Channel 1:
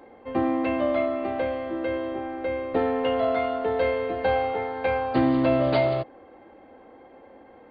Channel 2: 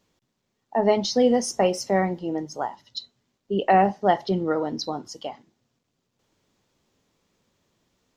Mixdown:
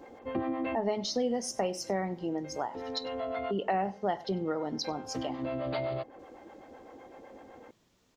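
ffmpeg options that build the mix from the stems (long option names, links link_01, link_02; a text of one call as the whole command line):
ffmpeg -i stem1.wav -i stem2.wav -filter_complex "[0:a]acrossover=split=520[link_01][link_02];[link_01]aeval=exprs='val(0)*(1-0.7/2+0.7/2*cos(2*PI*7.9*n/s))':channel_layout=same[link_03];[link_02]aeval=exprs='val(0)*(1-0.7/2-0.7/2*cos(2*PI*7.9*n/s))':channel_layout=same[link_04];[link_03][link_04]amix=inputs=2:normalize=0,volume=2.5dB[link_05];[1:a]volume=1dB,asplit=3[link_06][link_07][link_08];[link_07]volume=-22.5dB[link_09];[link_08]apad=whole_len=339963[link_10];[link_05][link_10]sidechaincompress=threshold=-37dB:ratio=8:attack=31:release=935[link_11];[link_09]aecho=0:1:97:1[link_12];[link_11][link_06][link_12]amix=inputs=3:normalize=0,acompressor=threshold=-33dB:ratio=2.5" out.wav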